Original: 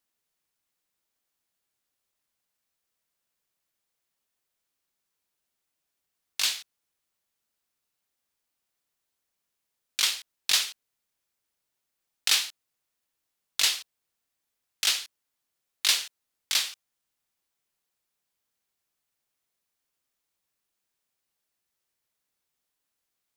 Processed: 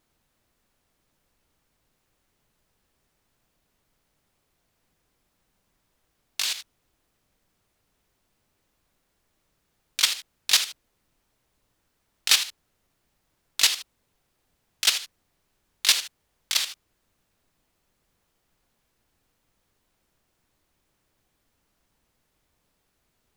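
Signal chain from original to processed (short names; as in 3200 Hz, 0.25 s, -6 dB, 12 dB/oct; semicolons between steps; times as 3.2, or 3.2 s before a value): level quantiser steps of 11 dB; added noise pink -80 dBFS; gain +6.5 dB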